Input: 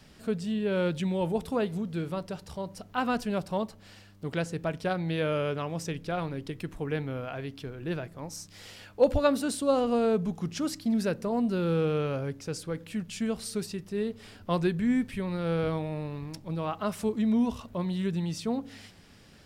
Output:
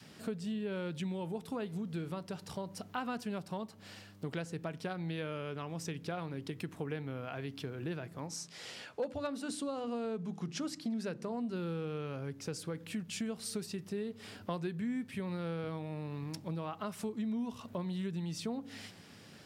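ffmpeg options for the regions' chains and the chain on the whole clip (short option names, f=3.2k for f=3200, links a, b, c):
-filter_complex "[0:a]asettb=1/sr,asplit=3[a][b][c];[a]atrim=end=8.274[d];[b]atrim=start=8.27:end=11.56,asetpts=PTS-STARTPTS,afade=t=in:d=0.004:c=qsin,afade=t=out:st=3.286:d=0.004:c=qsin,lowpass=9.3k,bandreject=f=50:t=h:w=6,bandreject=f=100:t=h:w=6,bandreject=f=150:t=h:w=6,bandreject=f=200:t=h:w=6,bandreject=f=250:t=h:w=6,bandreject=f=300:t=h:w=6,bandreject=f=350:t=h:w=6,asoftclip=type=hard:threshold=-14.5dB[e];[c]atrim=start=11.556[f];[d][e]acrossfade=d=0.004:c1=hsin:c2=qsin[g];[g][f]acrossfade=d=0.004:c1=qsin:c2=hsin,highpass=f=100:w=0.5412,highpass=f=100:w=1.3066,acompressor=threshold=-37dB:ratio=4,adynamicequalizer=threshold=0.00178:dfrequency=570:dqfactor=2.8:tfrequency=570:tqfactor=2.8:attack=5:release=100:ratio=0.375:range=2.5:mode=cutabove:tftype=bell,volume=1dB"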